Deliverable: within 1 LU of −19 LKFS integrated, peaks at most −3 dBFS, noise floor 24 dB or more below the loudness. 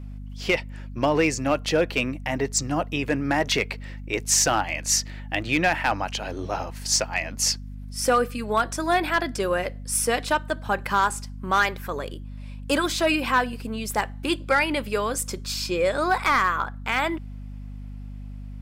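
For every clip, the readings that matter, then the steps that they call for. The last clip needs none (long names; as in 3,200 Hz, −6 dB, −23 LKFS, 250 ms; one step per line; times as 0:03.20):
share of clipped samples 0.2%; peaks flattened at −12.5 dBFS; mains hum 50 Hz; hum harmonics up to 250 Hz; level of the hum −34 dBFS; integrated loudness −24.5 LKFS; sample peak −12.5 dBFS; target loudness −19.0 LKFS
→ clipped peaks rebuilt −12.5 dBFS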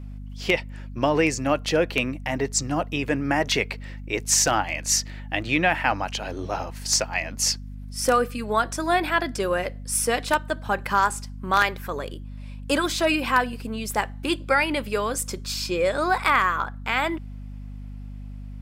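share of clipped samples 0.0%; mains hum 50 Hz; hum harmonics up to 250 Hz; level of the hum −34 dBFS
→ mains-hum notches 50/100/150/200/250 Hz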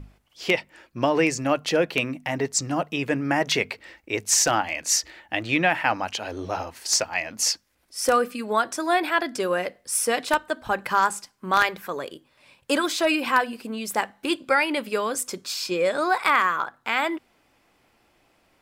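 mains hum none found; integrated loudness −24.0 LKFS; sample peak −3.0 dBFS; target loudness −19.0 LKFS
→ level +5 dB
brickwall limiter −3 dBFS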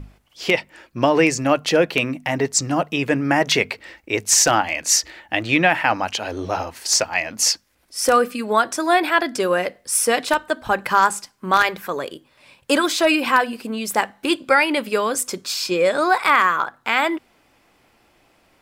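integrated loudness −19.5 LKFS; sample peak −3.0 dBFS; background noise floor −60 dBFS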